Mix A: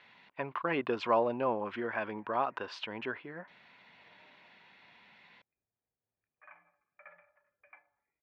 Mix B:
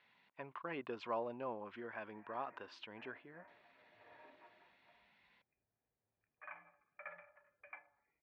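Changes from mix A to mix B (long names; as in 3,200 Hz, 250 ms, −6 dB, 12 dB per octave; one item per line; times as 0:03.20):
speech −12.0 dB
background +4.0 dB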